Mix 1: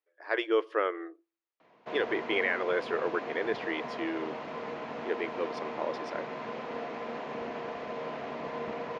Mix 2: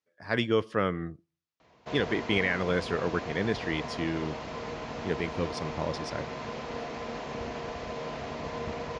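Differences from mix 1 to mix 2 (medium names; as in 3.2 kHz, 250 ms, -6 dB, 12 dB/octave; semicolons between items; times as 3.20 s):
speech: remove brick-wall FIR high-pass 300 Hz; master: remove three-band isolator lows -23 dB, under 170 Hz, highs -14 dB, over 3.2 kHz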